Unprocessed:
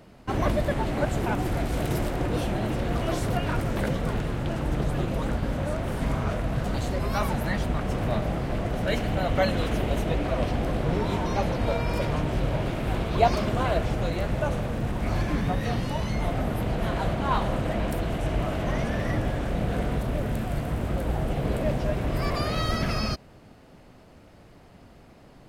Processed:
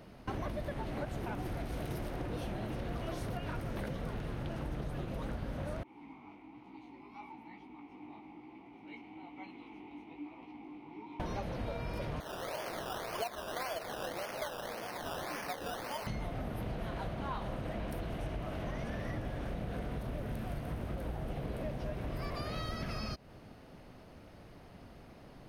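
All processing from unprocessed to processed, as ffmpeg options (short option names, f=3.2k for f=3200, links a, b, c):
-filter_complex "[0:a]asettb=1/sr,asplit=3[a][b][c];[a]atrim=end=5.834[d];[b]atrim=start=5.83:end=11.2,asetpts=PTS-STARTPTS,afade=t=in:d=0.004:c=qsin,afade=t=out:st=5.366:d=0.004:c=qsin,flanger=delay=15.5:depth=5:speed=1.1,asplit=3[e][f][g];[e]bandpass=f=300:t=q:w=8,volume=0dB[h];[f]bandpass=f=870:t=q:w=8,volume=-6dB[i];[g]bandpass=f=2.24k:t=q:w=8,volume=-9dB[j];[h][i][j]amix=inputs=3:normalize=0,lowshelf=f=350:g=-10.5[k];[c]atrim=start=11.196[l];[d][k]acrossfade=d=0.004:c1=hsin:c2=qsin[m];[m][l]acrossfade=d=0.004:c1=qsin:c2=hsin,asettb=1/sr,asplit=3[n][o][p];[n]atrim=end=12.204[q];[o]atrim=start=12.2:end=16.07,asetpts=PTS-STARTPTS,afade=t=in:d=0.004:c=qsin,afade=t=out:st=3.866:d=0.004:c=qsin,highpass=610,acrusher=samples=16:mix=1:aa=0.000001:lfo=1:lforange=9.6:lforate=1.8[r];[p]atrim=start=16.066[s];[q][r]acrossfade=d=0.004:c1=hsin:c2=qsin[t];[t][s]acrossfade=d=0.004:c1=qsin:c2=hsin,equalizer=f=7.5k:w=7.3:g=-13,acompressor=threshold=-33dB:ratio=6,volume=-2.5dB"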